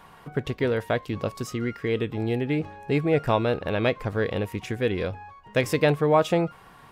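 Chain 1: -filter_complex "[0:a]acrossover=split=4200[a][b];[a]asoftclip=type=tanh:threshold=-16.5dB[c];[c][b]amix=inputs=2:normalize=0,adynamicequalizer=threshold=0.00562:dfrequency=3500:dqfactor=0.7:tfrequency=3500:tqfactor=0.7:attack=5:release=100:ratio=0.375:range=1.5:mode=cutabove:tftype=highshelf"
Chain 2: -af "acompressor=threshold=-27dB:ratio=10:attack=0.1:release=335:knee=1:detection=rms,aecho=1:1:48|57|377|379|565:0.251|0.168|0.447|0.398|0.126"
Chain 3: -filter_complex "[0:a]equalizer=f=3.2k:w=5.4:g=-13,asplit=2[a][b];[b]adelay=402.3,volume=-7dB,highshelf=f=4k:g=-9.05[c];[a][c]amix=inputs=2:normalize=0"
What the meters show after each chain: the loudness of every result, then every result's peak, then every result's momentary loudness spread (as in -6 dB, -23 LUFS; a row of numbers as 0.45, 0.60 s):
-28.0, -35.5, -25.5 LUFS; -15.5, -20.0, -8.5 dBFS; 8, 3, 9 LU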